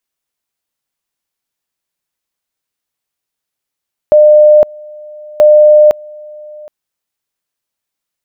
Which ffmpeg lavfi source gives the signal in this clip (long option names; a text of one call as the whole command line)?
ffmpeg -f lavfi -i "aevalsrc='pow(10,(-1.5-26*gte(mod(t,1.28),0.51))/20)*sin(2*PI*603*t)':duration=2.56:sample_rate=44100" out.wav